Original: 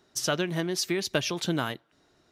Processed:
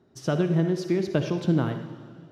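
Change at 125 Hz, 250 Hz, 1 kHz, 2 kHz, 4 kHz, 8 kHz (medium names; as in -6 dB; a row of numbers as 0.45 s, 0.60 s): +9.0 dB, +6.5 dB, -1.5 dB, -5.5 dB, -10.5 dB, -14.0 dB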